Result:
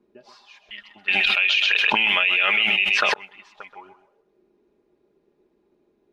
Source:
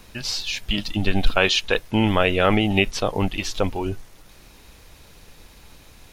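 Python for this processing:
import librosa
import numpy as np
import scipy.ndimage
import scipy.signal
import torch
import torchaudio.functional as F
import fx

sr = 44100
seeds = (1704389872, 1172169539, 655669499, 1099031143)

y = fx.low_shelf(x, sr, hz=210.0, db=-4.0)
y = y + 0.52 * np.pad(y, (int(4.9 * sr / 1000.0), 0))[:len(y)]
y = fx.auto_wah(y, sr, base_hz=310.0, top_hz=2500.0, q=5.5, full_db=-17.5, direction='up')
y = fx.echo_feedback(y, sr, ms=129, feedback_pct=26, wet_db=-11.5)
y = fx.env_flatten(y, sr, amount_pct=100, at=(1.08, 3.14))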